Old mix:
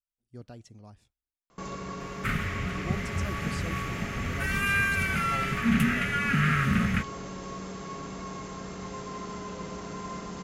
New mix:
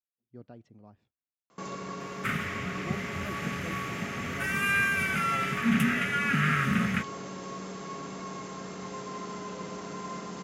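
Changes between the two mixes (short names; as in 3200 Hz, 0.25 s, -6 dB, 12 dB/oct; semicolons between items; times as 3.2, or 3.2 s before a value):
speech: add tape spacing loss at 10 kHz 33 dB; second sound: add Butterworth band-stop 4300 Hz, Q 7.7; master: add HPF 150 Hz 12 dB/oct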